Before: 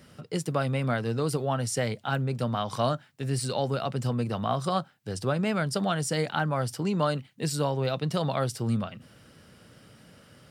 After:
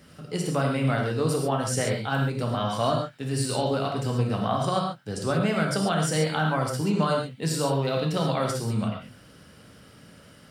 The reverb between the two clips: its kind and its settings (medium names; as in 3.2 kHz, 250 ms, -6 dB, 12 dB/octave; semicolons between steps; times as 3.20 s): gated-style reverb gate 160 ms flat, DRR 0 dB